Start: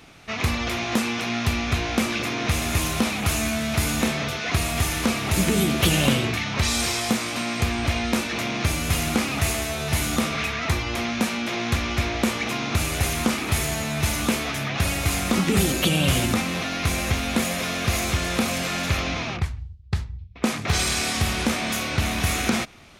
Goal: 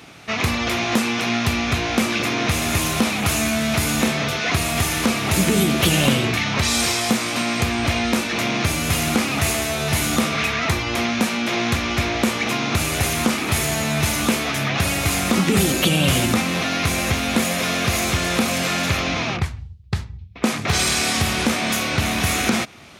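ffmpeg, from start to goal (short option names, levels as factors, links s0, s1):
-filter_complex "[0:a]highpass=87,asplit=2[s0][s1];[s1]alimiter=limit=0.15:level=0:latency=1:release=391,volume=0.944[s2];[s0][s2]amix=inputs=2:normalize=0"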